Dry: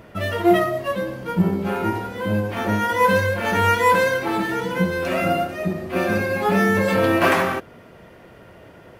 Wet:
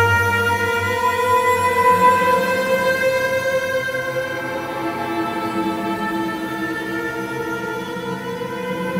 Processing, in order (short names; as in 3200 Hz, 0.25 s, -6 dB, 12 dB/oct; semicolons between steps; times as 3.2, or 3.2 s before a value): added harmonics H 4 -31 dB, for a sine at -4.5 dBFS; Paulstretch 8.3×, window 0.25 s, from 3.68